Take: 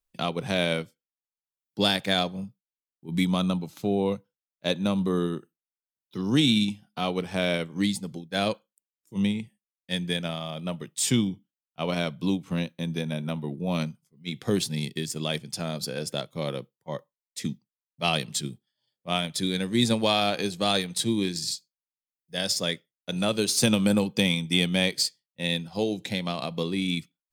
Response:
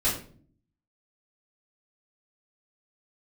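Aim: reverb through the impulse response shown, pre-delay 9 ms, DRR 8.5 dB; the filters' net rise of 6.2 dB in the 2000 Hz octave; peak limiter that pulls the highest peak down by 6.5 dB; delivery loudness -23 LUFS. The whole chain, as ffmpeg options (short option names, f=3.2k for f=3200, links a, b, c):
-filter_complex "[0:a]equalizer=f=2k:t=o:g=8,alimiter=limit=-11dB:level=0:latency=1,asplit=2[a][b];[1:a]atrim=start_sample=2205,adelay=9[c];[b][c]afir=irnorm=-1:irlink=0,volume=-19dB[d];[a][d]amix=inputs=2:normalize=0,volume=3dB"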